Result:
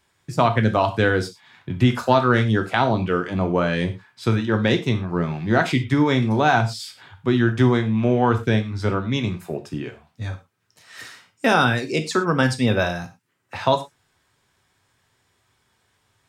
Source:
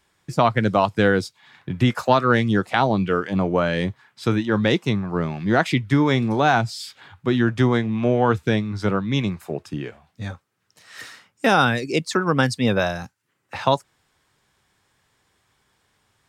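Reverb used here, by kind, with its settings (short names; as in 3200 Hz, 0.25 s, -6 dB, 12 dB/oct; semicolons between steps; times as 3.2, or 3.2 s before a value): non-linear reverb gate 0.14 s falling, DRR 6 dB; gain -1 dB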